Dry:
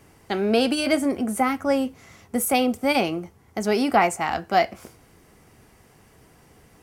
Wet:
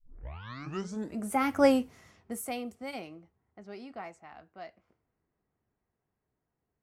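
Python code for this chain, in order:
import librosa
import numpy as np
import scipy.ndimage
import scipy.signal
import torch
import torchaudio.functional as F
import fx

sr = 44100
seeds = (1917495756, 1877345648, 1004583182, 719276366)

y = fx.tape_start_head(x, sr, length_s=1.39)
y = fx.doppler_pass(y, sr, speed_mps=13, closest_m=1.9, pass_at_s=1.64)
y = fx.env_lowpass(y, sr, base_hz=1700.0, full_db=-35.0)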